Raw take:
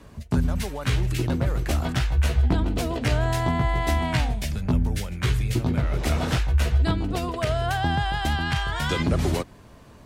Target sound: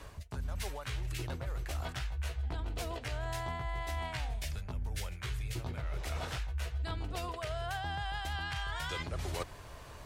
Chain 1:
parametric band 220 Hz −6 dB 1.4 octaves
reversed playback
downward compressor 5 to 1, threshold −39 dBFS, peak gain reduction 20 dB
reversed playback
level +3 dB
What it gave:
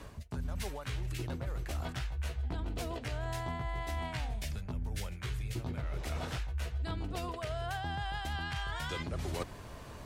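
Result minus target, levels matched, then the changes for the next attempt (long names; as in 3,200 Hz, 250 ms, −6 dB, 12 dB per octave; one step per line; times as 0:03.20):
250 Hz band +4.5 dB
change: parametric band 220 Hz −15 dB 1.4 octaves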